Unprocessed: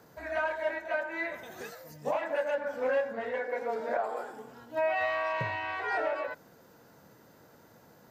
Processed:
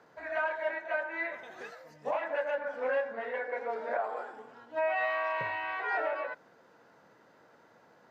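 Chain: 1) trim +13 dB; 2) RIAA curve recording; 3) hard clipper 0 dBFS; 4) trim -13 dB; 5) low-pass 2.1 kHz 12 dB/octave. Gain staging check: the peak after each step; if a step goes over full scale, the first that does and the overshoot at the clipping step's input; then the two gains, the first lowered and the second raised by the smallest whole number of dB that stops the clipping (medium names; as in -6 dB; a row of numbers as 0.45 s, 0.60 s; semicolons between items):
-7.5 dBFS, -6.0 dBFS, -6.0 dBFS, -19.0 dBFS, -20.5 dBFS; nothing clips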